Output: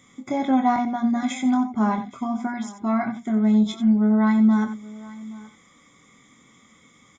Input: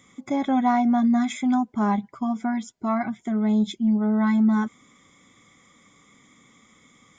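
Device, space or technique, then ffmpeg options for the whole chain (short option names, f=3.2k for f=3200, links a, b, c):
slapback doubling: -filter_complex "[0:a]asettb=1/sr,asplit=3[a][b][c];[a]atrim=end=0.764[d];[b]atrim=start=0.76:end=1.23,asetpts=PTS-STARTPTS,afade=t=in:d=0.004:c=qsin,afade=t=out:st=0.466:d=0.004:c=qsin,agate=range=-33dB:threshold=-18dB:ratio=3:detection=peak[e];[c]atrim=start=1.226[f];[d][e]acrossfade=d=0.004:c1=hsin:c2=qsin[g];[g][f]acrossfade=d=0.004:c1=qsin:c2=hsin,asplit=3[h][i][j];[i]adelay=23,volume=-6dB[k];[j]adelay=90,volume=-11dB[l];[h][k][l]amix=inputs=3:normalize=0,aecho=1:1:823:0.1"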